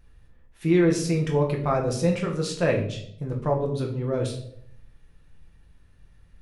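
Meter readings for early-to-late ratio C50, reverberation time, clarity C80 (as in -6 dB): 8.5 dB, 0.70 s, 12.0 dB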